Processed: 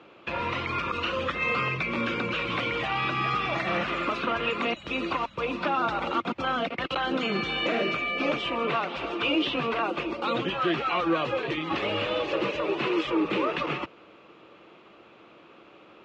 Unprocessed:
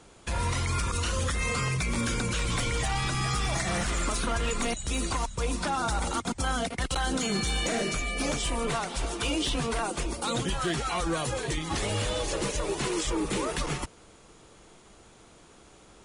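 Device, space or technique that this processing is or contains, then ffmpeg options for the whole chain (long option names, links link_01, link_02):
kitchen radio: -af "highpass=170,equalizer=frequency=330:width_type=q:width=4:gain=6,equalizer=frequency=560:width_type=q:width=4:gain=6,equalizer=frequency=1200:width_type=q:width=4:gain=7,equalizer=frequency=2600:width_type=q:width=4:gain=9,lowpass=frequency=3600:width=0.5412,lowpass=frequency=3600:width=1.3066"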